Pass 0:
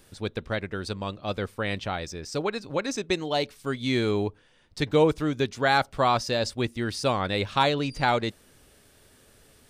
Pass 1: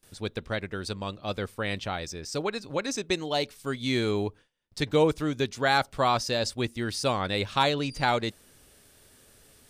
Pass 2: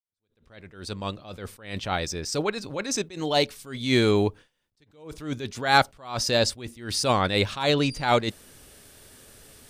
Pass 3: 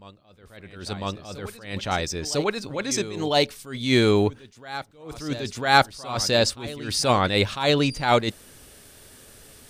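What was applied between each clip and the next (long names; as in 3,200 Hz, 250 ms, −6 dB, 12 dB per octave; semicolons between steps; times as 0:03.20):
noise gate with hold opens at −47 dBFS; high-shelf EQ 4,500 Hz +5.5 dB; level −2 dB
fade in at the beginning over 1.52 s; level that may rise only so fast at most 120 dB per second; level +6.5 dB
backwards echo 1,001 ms −16.5 dB; level +2 dB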